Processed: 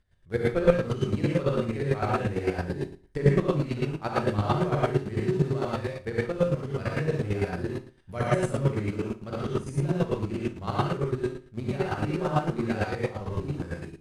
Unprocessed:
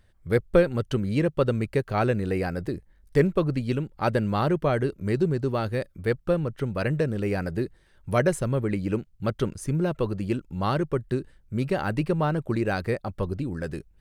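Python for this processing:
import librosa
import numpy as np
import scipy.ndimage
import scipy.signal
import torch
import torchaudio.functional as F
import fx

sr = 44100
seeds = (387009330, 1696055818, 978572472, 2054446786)

p1 = np.where(np.abs(x) >= 10.0 ** (-24.0 / 20.0), x, 0.0)
p2 = x + (p1 * librosa.db_to_amplitude(-9.5))
p3 = scipy.signal.sosfilt(scipy.signal.butter(2, 9300.0, 'lowpass', fs=sr, output='sos'), p2)
p4 = fx.room_flutter(p3, sr, wall_m=9.8, rt60_s=0.41)
p5 = fx.rev_gated(p4, sr, seeds[0], gate_ms=160, shape='rising', drr_db=-8.0)
p6 = fx.chopper(p5, sr, hz=8.9, depth_pct=60, duty_pct=25)
y = p6 * librosa.db_to_amplitude(-9.0)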